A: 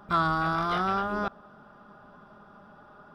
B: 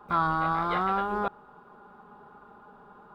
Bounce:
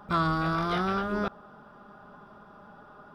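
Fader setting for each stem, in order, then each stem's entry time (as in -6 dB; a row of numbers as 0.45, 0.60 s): +0.5, -6.5 dB; 0.00, 0.00 s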